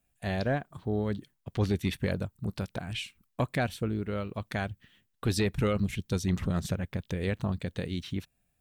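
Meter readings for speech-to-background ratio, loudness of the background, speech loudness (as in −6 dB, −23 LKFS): 18.5 dB, −51.0 LKFS, −32.5 LKFS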